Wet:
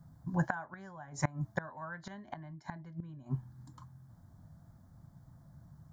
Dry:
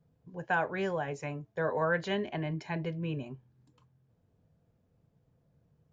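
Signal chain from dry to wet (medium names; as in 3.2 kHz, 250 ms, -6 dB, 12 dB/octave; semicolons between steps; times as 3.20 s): static phaser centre 1.1 kHz, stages 4; inverted gate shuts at -33 dBFS, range -25 dB; trim +14.5 dB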